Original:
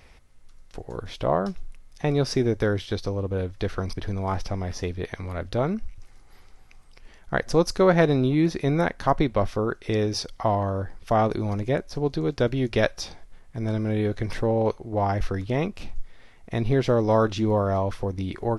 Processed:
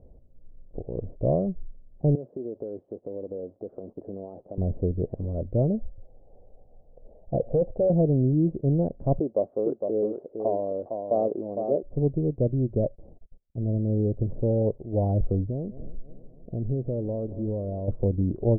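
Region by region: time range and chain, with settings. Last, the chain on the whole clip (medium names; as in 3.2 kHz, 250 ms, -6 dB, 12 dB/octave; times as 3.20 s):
2.15–4.58 s: zero-crossing glitches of -25.5 dBFS + high-pass 320 Hz + compression 10:1, threshold -31 dBFS
5.70–7.90 s: high-order bell 630 Hz +12 dB 1.1 oct + hard clipper -16.5 dBFS
9.19–11.83 s: high-pass 400 Hz + delay 458 ms -6 dB
12.79–14.79 s: gate -42 dBFS, range -29 dB + low-pass 1.7 kHz
15.46–17.88 s: multi-head delay 98 ms, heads second and third, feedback 55%, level -23 dB + compression 2.5:1, threshold -33 dBFS + distance through air 400 m
whole clip: Chebyshev low-pass 610 Hz, order 4; dynamic bell 130 Hz, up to +6 dB, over -38 dBFS, Q 1.6; gain riding within 3 dB 0.5 s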